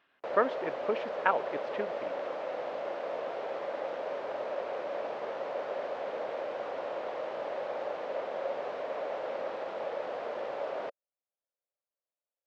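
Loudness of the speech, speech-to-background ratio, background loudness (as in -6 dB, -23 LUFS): -33.0 LUFS, 3.5 dB, -36.5 LUFS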